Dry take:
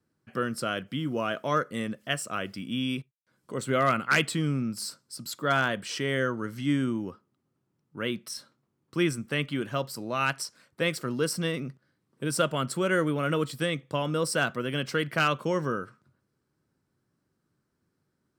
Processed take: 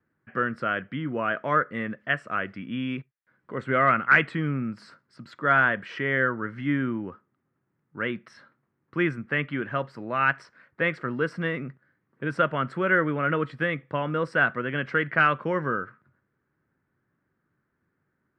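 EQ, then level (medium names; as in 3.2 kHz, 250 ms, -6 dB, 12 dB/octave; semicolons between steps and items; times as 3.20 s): resonant low-pass 1.8 kHz, resonance Q 2.6; 0.0 dB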